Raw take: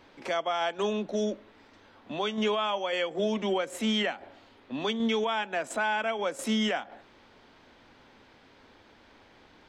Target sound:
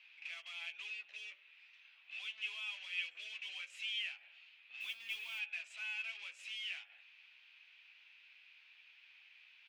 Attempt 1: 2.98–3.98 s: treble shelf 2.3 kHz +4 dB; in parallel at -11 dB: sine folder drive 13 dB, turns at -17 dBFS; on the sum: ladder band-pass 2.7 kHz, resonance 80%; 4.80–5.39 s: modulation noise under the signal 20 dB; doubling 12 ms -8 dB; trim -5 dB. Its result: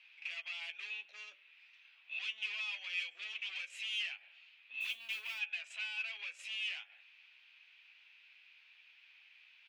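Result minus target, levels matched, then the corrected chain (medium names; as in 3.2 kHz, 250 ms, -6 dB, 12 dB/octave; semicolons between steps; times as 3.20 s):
sine folder: distortion -18 dB
2.98–3.98 s: treble shelf 2.3 kHz +4 dB; in parallel at -11 dB: sine folder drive 13 dB, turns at -25.5 dBFS; on the sum: ladder band-pass 2.7 kHz, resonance 80%; 4.80–5.39 s: modulation noise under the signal 20 dB; doubling 12 ms -8 dB; trim -5 dB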